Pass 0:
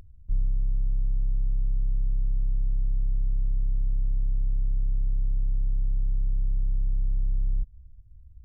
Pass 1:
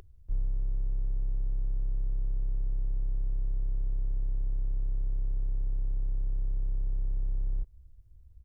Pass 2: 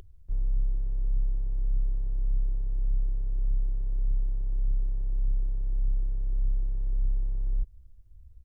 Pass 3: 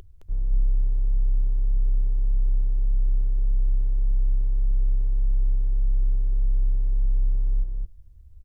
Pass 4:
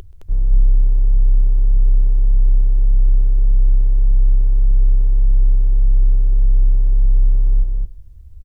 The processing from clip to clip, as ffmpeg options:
ffmpeg -i in.wav -af "firequalizer=gain_entry='entry(130,0);entry(220,-5);entry(380,12);entry(580,9)':delay=0.05:min_phase=1,volume=-5dB" out.wav
ffmpeg -i in.wav -af "flanger=delay=0.3:depth=5:regen=58:speed=1.7:shape=triangular,volume=5dB" out.wav
ffmpeg -i in.wav -af "aecho=1:1:215:0.631,volume=2.5dB" out.wav
ffmpeg -i in.wav -af "aecho=1:1:129:0.0891,volume=9dB" out.wav

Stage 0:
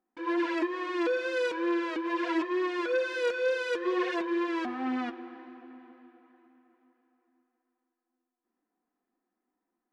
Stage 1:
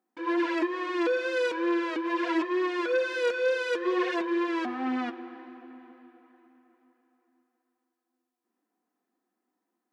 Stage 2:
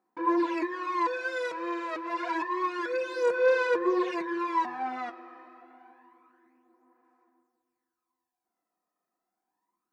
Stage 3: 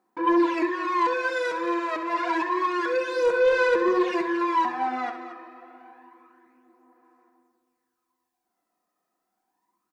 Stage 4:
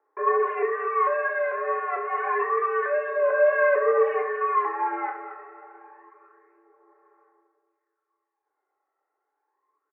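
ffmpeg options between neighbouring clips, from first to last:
ffmpeg -i in.wav -af "highpass=150,volume=2dB" out.wav
ffmpeg -i in.wav -af "equalizer=frequency=160:width_type=o:width=0.33:gain=9,equalizer=frequency=250:width_type=o:width=0.33:gain=-8,equalizer=frequency=1000:width_type=o:width=0.33:gain=8,equalizer=frequency=3150:width_type=o:width=0.33:gain=-8,aphaser=in_gain=1:out_gain=1:delay=1.6:decay=0.58:speed=0.28:type=sinusoidal,volume=-4dB" out.wav
ffmpeg -i in.wav -af "aeval=exprs='0.224*sin(PI/2*1.58*val(0)/0.224)':channel_layout=same,aecho=1:1:67.06|227.4:0.316|0.251,volume=-2.5dB" out.wav
ffmpeg -i in.wav -filter_complex "[0:a]asplit=2[link_01][link_02];[link_02]adelay=28,volume=-7dB[link_03];[link_01][link_03]amix=inputs=2:normalize=0,highpass=frequency=260:width_type=q:width=0.5412,highpass=frequency=260:width_type=q:width=1.307,lowpass=frequency=2000:width_type=q:width=0.5176,lowpass=frequency=2000:width_type=q:width=0.7071,lowpass=frequency=2000:width_type=q:width=1.932,afreqshift=85" out.wav

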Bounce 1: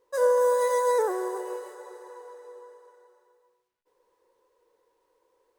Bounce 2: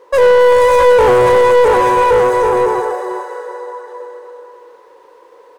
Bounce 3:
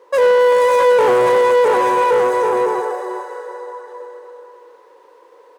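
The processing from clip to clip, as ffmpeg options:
ffmpeg -i in.wav -filter_complex "[0:a]aecho=1:1:660|1122|1445|1672|1830:0.631|0.398|0.251|0.158|0.1,asplit=2[link_01][link_02];[link_02]highpass=frequency=720:poles=1,volume=26dB,asoftclip=type=tanh:threshold=-11dB[link_03];[link_01][link_03]amix=inputs=2:normalize=0,lowpass=frequency=1400:poles=1,volume=-6dB,volume=9dB" out.wav
ffmpeg -i in.wav -af "highpass=190,volume=-3.5dB" out.wav

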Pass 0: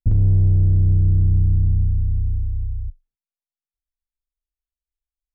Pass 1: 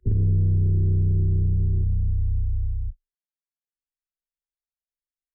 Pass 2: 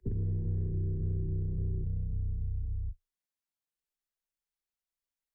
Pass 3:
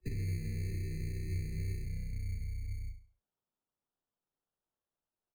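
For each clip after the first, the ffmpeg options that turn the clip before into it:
ffmpeg -i in.wav -filter_complex "[0:a]afwtdn=0.0891,superequalizer=7b=3.16:11b=3.98,acrossover=split=120[link_01][link_02];[link_01]alimiter=limit=-18dB:level=0:latency=1:release=42[link_03];[link_03][link_02]amix=inputs=2:normalize=0,volume=-1dB" out.wav
ffmpeg -i in.wav -filter_complex "[0:a]flanger=delay=4.4:depth=1.9:regen=-74:speed=1.8:shape=sinusoidal,acrossover=split=92|380[link_01][link_02][link_03];[link_01]acompressor=threshold=-41dB:ratio=4[link_04];[link_02]acompressor=threshold=-41dB:ratio=4[link_05];[link_03]acompressor=threshold=-54dB:ratio=4[link_06];[link_04][link_05][link_06]amix=inputs=3:normalize=0,volume=4.5dB" out.wav
ffmpeg -i in.wav -af "flanger=delay=5.4:depth=8.4:regen=57:speed=1:shape=triangular,acrusher=samples=20:mix=1:aa=0.000001,aecho=1:1:68|136|204|272:0.316|0.101|0.0324|0.0104" out.wav

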